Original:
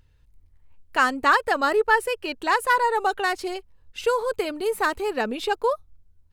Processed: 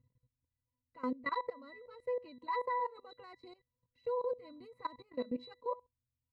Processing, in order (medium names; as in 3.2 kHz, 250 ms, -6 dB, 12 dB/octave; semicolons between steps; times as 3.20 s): Chebyshev shaper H 2 -24 dB, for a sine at -6 dBFS; pitch-class resonator B, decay 0.2 s; level held to a coarse grid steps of 19 dB; trim +4.5 dB